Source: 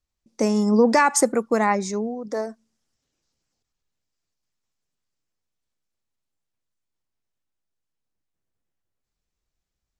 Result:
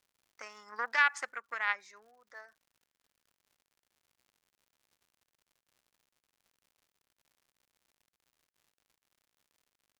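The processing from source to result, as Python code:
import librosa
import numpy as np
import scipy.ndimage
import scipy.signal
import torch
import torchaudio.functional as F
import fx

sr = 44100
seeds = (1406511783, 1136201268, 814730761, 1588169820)

y = fx.cheby_harmonics(x, sr, harmonics=(3, 4, 6), levels_db=(-14, -32, -34), full_scale_db=-5.5)
y = fx.ladder_bandpass(y, sr, hz=1900.0, resonance_pct=45)
y = fx.dmg_crackle(y, sr, seeds[0], per_s=130.0, level_db=-63.0)
y = y * librosa.db_to_amplitude(6.0)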